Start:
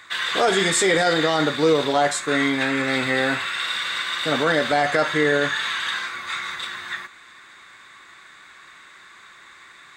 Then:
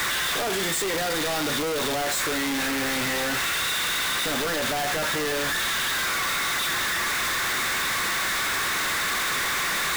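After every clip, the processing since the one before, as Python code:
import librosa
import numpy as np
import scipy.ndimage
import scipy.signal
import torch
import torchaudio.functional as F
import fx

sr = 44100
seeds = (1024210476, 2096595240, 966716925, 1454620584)

y = np.sign(x) * np.sqrt(np.mean(np.square(x)))
y = y * librosa.db_to_amplitude(-2.5)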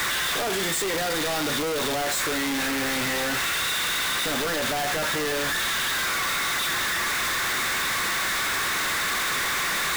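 y = x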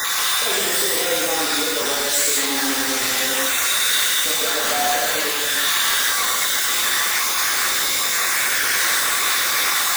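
y = fx.spec_dropout(x, sr, seeds[0], share_pct=39)
y = fx.bass_treble(y, sr, bass_db=-10, treble_db=7)
y = fx.rev_gated(y, sr, seeds[1], gate_ms=250, shape='flat', drr_db=-4.5)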